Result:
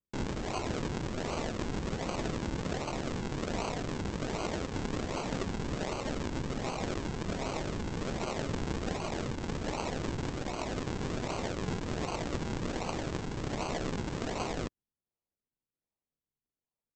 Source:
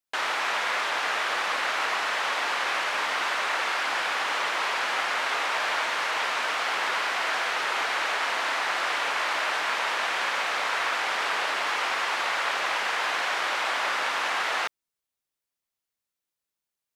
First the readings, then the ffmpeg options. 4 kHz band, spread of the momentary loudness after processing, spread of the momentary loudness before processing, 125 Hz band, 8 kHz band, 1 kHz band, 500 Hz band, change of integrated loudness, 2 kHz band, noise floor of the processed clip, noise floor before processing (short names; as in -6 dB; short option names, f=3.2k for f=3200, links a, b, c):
-14.5 dB, 2 LU, 0 LU, n/a, -7.5 dB, -13.0 dB, -1.5 dB, -10.0 dB, -18.5 dB, under -85 dBFS, under -85 dBFS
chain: -af "flanger=delay=1.8:depth=4.6:regen=47:speed=0.2:shape=triangular,aresample=16000,acrusher=samples=18:mix=1:aa=0.000001:lfo=1:lforange=18:lforate=1.3,aresample=44100,tremolo=f=270:d=0.75"